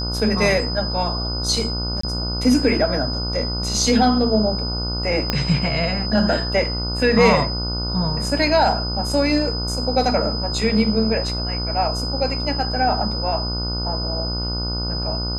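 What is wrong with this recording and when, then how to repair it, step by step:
buzz 60 Hz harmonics 25 -26 dBFS
tone 5000 Hz -26 dBFS
2.01–2.03 gap 24 ms
5.3 pop -5 dBFS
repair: de-click; notch 5000 Hz, Q 30; de-hum 60 Hz, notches 25; interpolate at 2.01, 24 ms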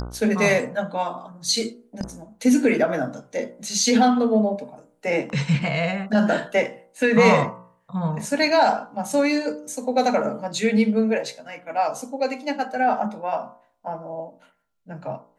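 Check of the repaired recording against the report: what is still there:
5.3 pop

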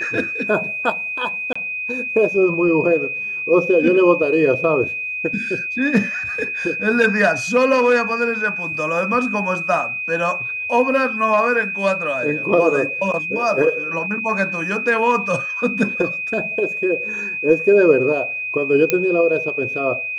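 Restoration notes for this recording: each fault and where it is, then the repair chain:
tone 2500 Hz -23 dBFS
1.53–1.55 gap 25 ms
18.9 pop -2 dBFS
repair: de-click; notch 2500 Hz, Q 30; interpolate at 1.53, 25 ms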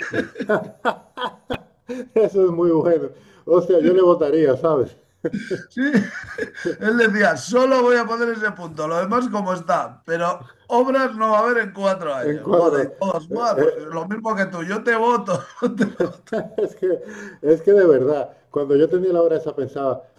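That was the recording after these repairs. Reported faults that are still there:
none

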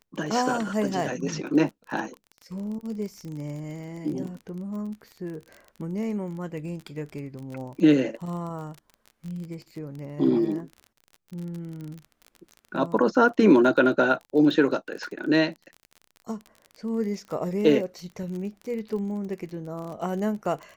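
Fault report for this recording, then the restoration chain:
crackle 29/s -34 dBFS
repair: de-click

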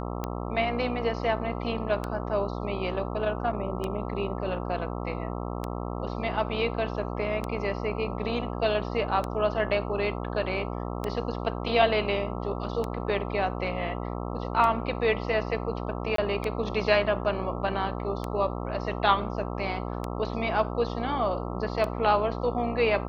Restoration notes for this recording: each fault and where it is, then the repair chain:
buzz 60 Hz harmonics 22 -33 dBFS
tick 33 1/3 rpm -17 dBFS
16.16–16.18 gap 23 ms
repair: de-click; de-hum 60 Hz, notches 22; interpolate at 16.16, 23 ms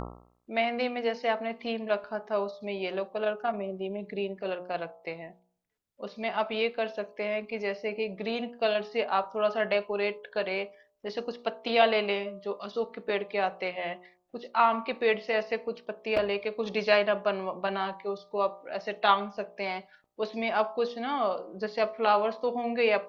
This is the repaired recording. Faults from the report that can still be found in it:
none

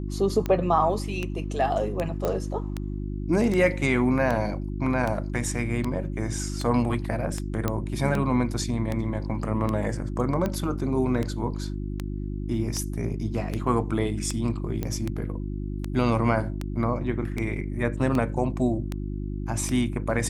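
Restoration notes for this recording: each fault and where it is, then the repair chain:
hum 50 Hz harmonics 7 -31 dBFS
tick 78 rpm -15 dBFS
2.25 pop -14 dBFS
7.68 pop -11 dBFS
14.83 pop -15 dBFS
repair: de-click; de-hum 50 Hz, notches 7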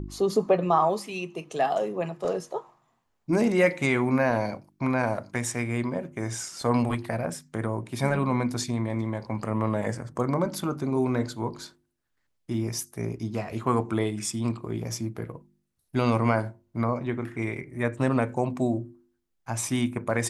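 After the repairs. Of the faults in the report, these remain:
14.83 pop

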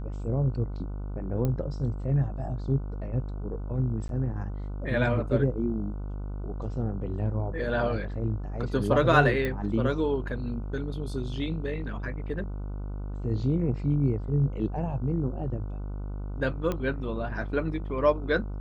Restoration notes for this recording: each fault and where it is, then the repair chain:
buzz 50 Hz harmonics 30 -34 dBFS
1.45 pop -17 dBFS
4.08–4.09 gap 12 ms
9.45 pop -18 dBFS
16.72 pop -17 dBFS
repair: de-click; de-hum 50 Hz, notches 30; interpolate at 4.08, 12 ms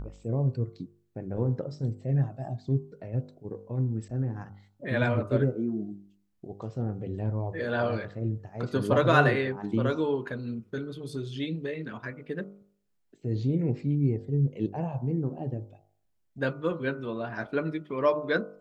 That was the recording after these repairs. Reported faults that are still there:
9.45 pop

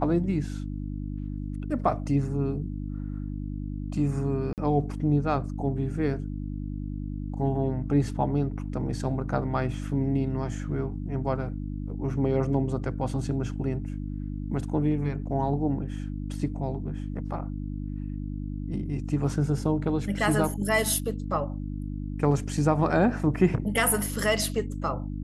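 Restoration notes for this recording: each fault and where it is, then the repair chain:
hum 50 Hz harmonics 6 -33 dBFS
4.53–4.58 gap 48 ms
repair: de-hum 50 Hz, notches 6; interpolate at 4.53, 48 ms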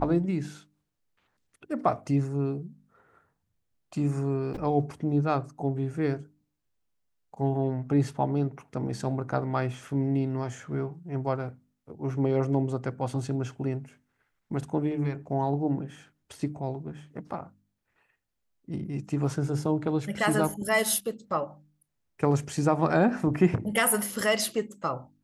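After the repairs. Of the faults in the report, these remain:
none

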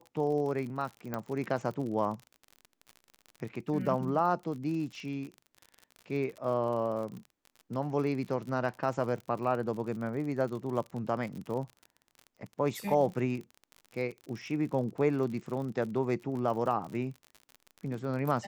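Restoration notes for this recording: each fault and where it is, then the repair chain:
crackle 50/s -38 dBFS
1.14 pop -20 dBFS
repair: de-click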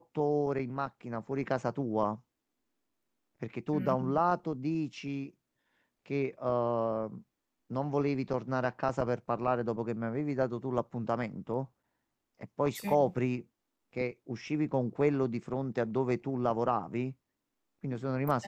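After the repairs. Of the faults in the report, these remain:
none

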